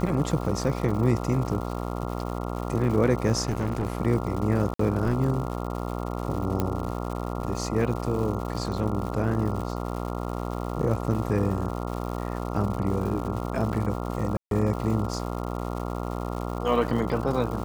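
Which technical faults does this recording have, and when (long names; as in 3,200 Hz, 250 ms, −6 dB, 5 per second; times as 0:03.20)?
mains buzz 60 Hz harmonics 23 −31 dBFS
surface crackle 250 per second −34 dBFS
0:03.43–0:03.97: clipping −21.5 dBFS
0:04.74–0:04.79: drop-out 54 ms
0:06.60: click −12 dBFS
0:14.37–0:14.51: drop-out 142 ms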